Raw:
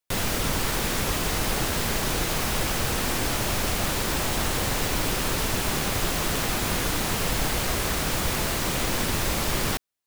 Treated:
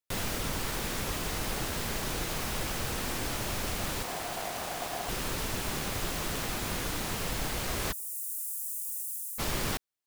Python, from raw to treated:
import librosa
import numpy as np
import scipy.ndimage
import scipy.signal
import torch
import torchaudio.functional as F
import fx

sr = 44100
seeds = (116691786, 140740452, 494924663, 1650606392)

y = fx.cheby2_highpass(x, sr, hz=2200.0, order=4, stop_db=70, at=(7.91, 9.38), fade=0.02)
y = fx.rider(y, sr, range_db=10, speed_s=0.5)
y = fx.ring_mod(y, sr, carrier_hz=710.0, at=(4.03, 5.09))
y = y * librosa.db_to_amplitude(-7.0)